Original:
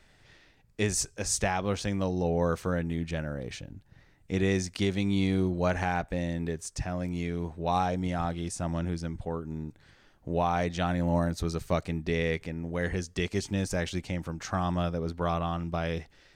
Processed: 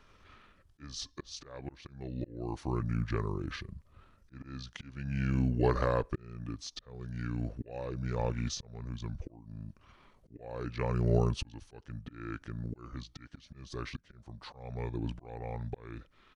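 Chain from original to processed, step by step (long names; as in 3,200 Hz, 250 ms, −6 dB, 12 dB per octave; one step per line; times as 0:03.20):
pitch shifter −6.5 semitones
volume swells 730 ms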